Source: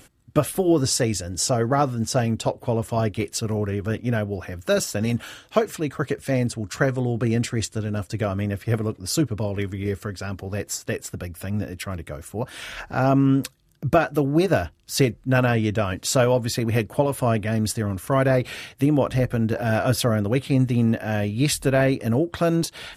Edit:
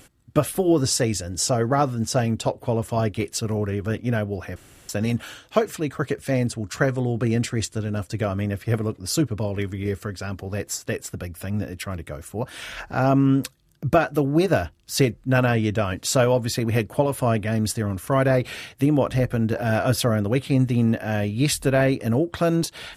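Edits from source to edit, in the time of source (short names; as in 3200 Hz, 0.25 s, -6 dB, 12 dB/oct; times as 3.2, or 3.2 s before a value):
4.56–4.89 room tone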